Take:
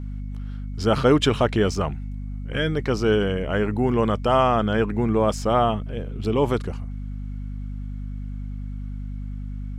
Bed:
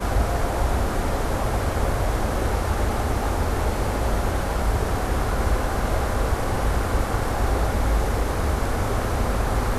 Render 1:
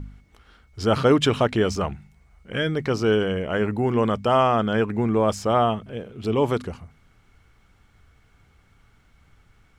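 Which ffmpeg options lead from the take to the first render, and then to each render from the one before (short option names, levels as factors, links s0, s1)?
-af "bandreject=f=50:t=h:w=4,bandreject=f=100:t=h:w=4,bandreject=f=150:t=h:w=4,bandreject=f=200:t=h:w=4,bandreject=f=250:t=h:w=4"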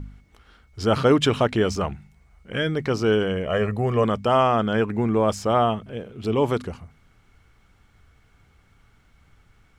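-filter_complex "[0:a]asettb=1/sr,asplit=3[s0][s1][s2];[s0]atrim=end=3.464[s3];[s1]atrim=start=3.46:end=4.04,asetpts=PTS-STARTPTS,afade=t=in:d=0.004:c=qsin,afade=t=out:st=0.576:d=0.004:c=qsin,aecho=1:1:1.7:0.65,atrim=end_sample=25578[s4];[s2]atrim=start=4.036[s5];[s3][s4]acrossfade=d=0.004:c1=hsin:c2=qsin[s6];[s6][s5]acrossfade=d=0.004:c1=qsin:c2=hsin"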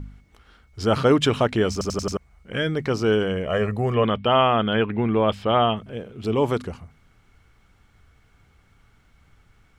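-filter_complex "[0:a]asettb=1/sr,asplit=3[s0][s1][s2];[s0]atrim=end=3.944[s3];[s1]atrim=start=3.94:end=5.77,asetpts=PTS-STARTPTS,afade=t=in:d=0.004:c=qsin,afade=t=out:st=1.826:d=0.004:c=qsin,highshelf=f=4500:t=q:w=3:g=-12.5[s4];[s2]atrim=start=5.766[s5];[s3][s4]acrossfade=d=0.004:c1=hsin:c2=qsin[s6];[s6][s5]acrossfade=d=0.004:c1=qsin:c2=hsin,asplit=6[s7][s8][s9][s10][s11][s12];[s7]atrim=end=1.812[s13];[s8]atrim=start=1.718:end=1.812[s14];[s9]atrim=start=1.718:end=1.812[s15];[s10]atrim=start=1.718:end=1.812[s16];[s11]atrim=start=1.718:end=1.812[s17];[s12]atrim=start=2.168[s18];[s13][s14]acrossfade=d=0.004:c1=hsin:c2=hsin[s19];[s19][s15]acrossfade=d=0.004:c1=hsin:c2=hsin[s20];[s20][s16]acrossfade=d=0.004:c1=hsin:c2=hsin[s21];[s21][s17]acrossfade=d=0.004:c1=hsin:c2=hsin[s22];[s22][s18]acrossfade=d=0.004:c1=hsin:c2=hsin"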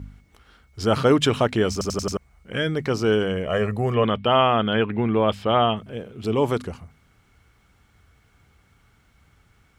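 -af "highpass=41,highshelf=f=8400:g=5.5"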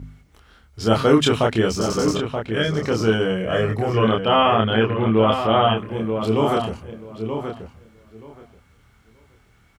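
-filter_complex "[0:a]asplit=2[s0][s1];[s1]adelay=27,volume=0.794[s2];[s0][s2]amix=inputs=2:normalize=0,asplit=2[s3][s4];[s4]adelay=929,lowpass=f=2900:p=1,volume=0.447,asplit=2[s5][s6];[s6]adelay=929,lowpass=f=2900:p=1,volume=0.17,asplit=2[s7][s8];[s8]adelay=929,lowpass=f=2900:p=1,volume=0.17[s9];[s3][s5][s7][s9]amix=inputs=4:normalize=0"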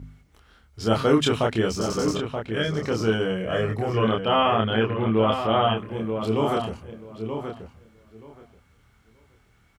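-af "volume=0.631"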